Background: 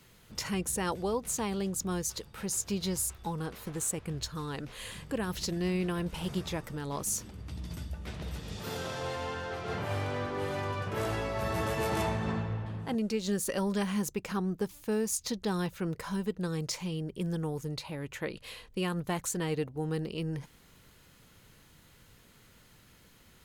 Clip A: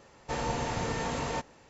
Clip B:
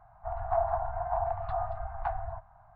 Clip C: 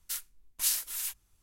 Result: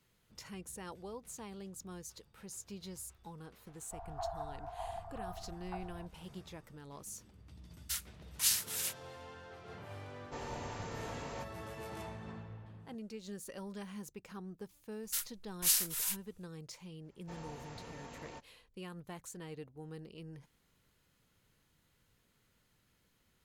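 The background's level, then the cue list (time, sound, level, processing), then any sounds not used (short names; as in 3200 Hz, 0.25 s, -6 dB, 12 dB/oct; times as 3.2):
background -14.5 dB
3.67 add B -12.5 dB
7.8 add C + weighting filter A
10.03 add A -12 dB
15.03 add C -0.5 dB
16.99 add A -17.5 dB, fades 0.10 s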